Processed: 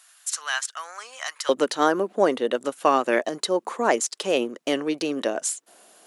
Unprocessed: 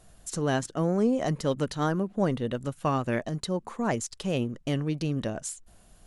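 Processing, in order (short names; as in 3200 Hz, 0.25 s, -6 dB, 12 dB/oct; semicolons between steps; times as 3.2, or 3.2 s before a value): HPF 1200 Hz 24 dB/oct, from 1.49 s 320 Hz; gain +9 dB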